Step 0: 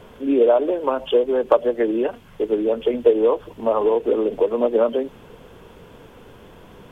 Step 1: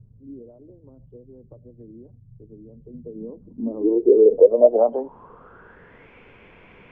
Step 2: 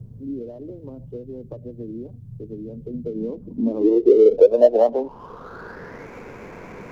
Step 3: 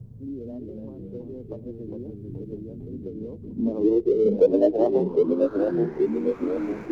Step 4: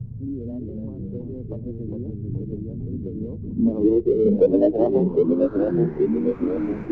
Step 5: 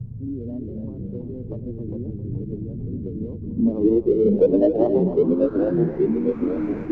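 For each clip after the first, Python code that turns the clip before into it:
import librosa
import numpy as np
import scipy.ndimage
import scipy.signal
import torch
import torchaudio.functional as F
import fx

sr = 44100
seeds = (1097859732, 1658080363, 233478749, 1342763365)

y1 = fx.dynamic_eq(x, sr, hz=2300.0, q=0.85, threshold_db=-41.0, ratio=4.0, max_db=-6)
y1 = fx.filter_sweep_lowpass(y1, sr, from_hz=120.0, to_hz=2300.0, start_s=2.77, end_s=6.12, q=7.9)
y1 = y1 * 10.0 ** (-6.5 / 20.0)
y2 = scipy.ndimage.median_filter(y1, 15, mode='constant')
y2 = fx.band_squash(y2, sr, depth_pct=40)
y2 = y2 * 10.0 ** (5.0 / 20.0)
y3 = fx.tremolo_random(y2, sr, seeds[0], hz=3.5, depth_pct=55)
y3 = fx.echo_pitch(y3, sr, ms=219, semitones=-2, count=3, db_per_echo=-3.0)
y3 = y3 * 10.0 ** (-2.0 / 20.0)
y4 = fx.bass_treble(y3, sr, bass_db=10, treble_db=-9)
y5 = y4 + 10.0 ** (-12.0 / 20.0) * np.pad(y4, (int(267 * sr / 1000.0), 0))[:len(y4)]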